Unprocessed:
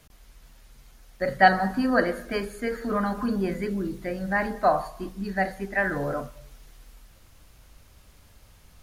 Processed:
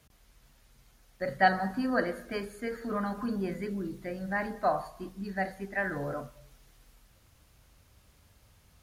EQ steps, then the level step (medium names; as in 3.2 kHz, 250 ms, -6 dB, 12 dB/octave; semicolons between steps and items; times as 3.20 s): high-pass 60 Hz 6 dB/octave; peaking EQ 93 Hz +4 dB 1.4 oct; -6.5 dB